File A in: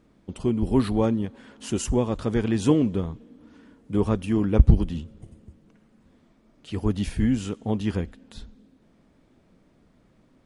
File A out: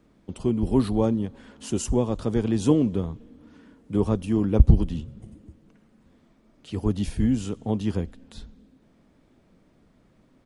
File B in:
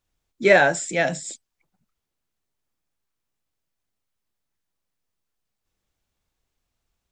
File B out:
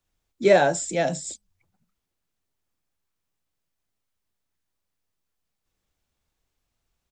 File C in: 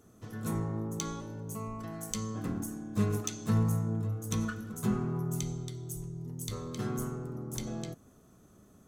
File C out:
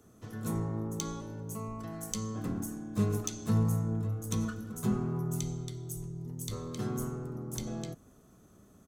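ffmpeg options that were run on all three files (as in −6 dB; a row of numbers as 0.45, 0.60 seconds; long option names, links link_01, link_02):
-filter_complex "[0:a]acrossover=split=130|1300|2800[link_01][link_02][link_03][link_04];[link_01]asplit=5[link_05][link_06][link_07][link_08][link_09];[link_06]adelay=186,afreqshift=-87,volume=-21.5dB[link_10];[link_07]adelay=372,afreqshift=-174,volume=-27.3dB[link_11];[link_08]adelay=558,afreqshift=-261,volume=-33.2dB[link_12];[link_09]adelay=744,afreqshift=-348,volume=-39dB[link_13];[link_05][link_10][link_11][link_12][link_13]amix=inputs=5:normalize=0[link_14];[link_03]acompressor=threshold=-57dB:ratio=6[link_15];[link_14][link_02][link_15][link_04]amix=inputs=4:normalize=0"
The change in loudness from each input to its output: 0.0, −2.0, 0.0 LU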